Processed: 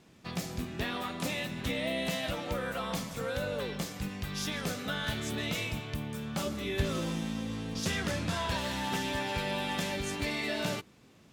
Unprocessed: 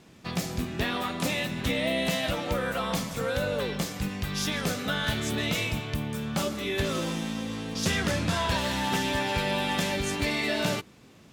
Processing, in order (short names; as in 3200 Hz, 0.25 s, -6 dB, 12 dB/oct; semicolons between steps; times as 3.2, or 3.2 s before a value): 6.45–7.8 low shelf 160 Hz +8.5 dB; gain -5.5 dB